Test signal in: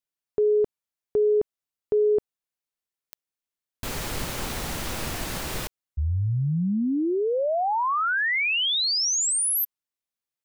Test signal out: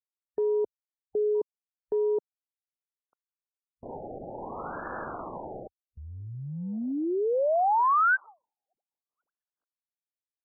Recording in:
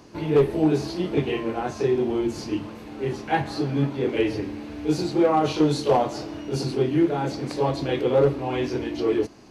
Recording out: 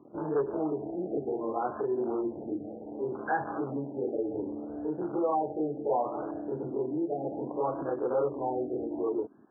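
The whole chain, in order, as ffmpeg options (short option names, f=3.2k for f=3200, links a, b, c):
-af "acompressor=threshold=-23dB:ratio=16:attack=0.2:release=339:knee=6:detection=peak,afwtdn=0.0126,lowshelf=f=270:g=-8.5,acontrast=28,aemphasis=mode=production:type=bsi,afftfilt=real='re*lt(b*sr/1024,810*pow(1800/810,0.5+0.5*sin(2*PI*0.66*pts/sr)))':imag='im*lt(b*sr/1024,810*pow(1800/810,0.5+0.5*sin(2*PI*0.66*pts/sr)))':win_size=1024:overlap=0.75"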